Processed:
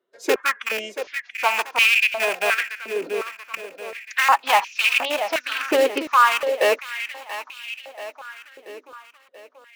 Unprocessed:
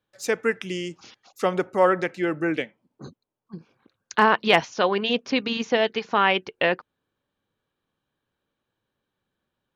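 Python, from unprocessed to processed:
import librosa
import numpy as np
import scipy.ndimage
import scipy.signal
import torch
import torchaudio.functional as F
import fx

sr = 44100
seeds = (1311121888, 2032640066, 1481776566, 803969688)

p1 = fx.rattle_buzz(x, sr, strikes_db=-33.0, level_db=-10.0)
p2 = fx.high_shelf(p1, sr, hz=3600.0, db=-8.0)
p3 = (np.mod(10.0 ** (16.5 / 20.0) * p2 + 1.0, 2.0) - 1.0) / 10.0 ** (16.5 / 20.0)
p4 = p2 + F.gain(torch.from_numpy(p3), -6.5).numpy()
p5 = fx.pitch_keep_formants(p4, sr, semitones=3.5)
p6 = p5 + fx.echo_feedback(p5, sr, ms=683, feedback_pct=54, wet_db=-11.0, dry=0)
p7 = fx.filter_held_highpass(p6, sr, hz=2.8, low_hz=400.0, high_hz=2600.0)
y = F.gain(torch.from_numpy(p7), -2.0).numpy()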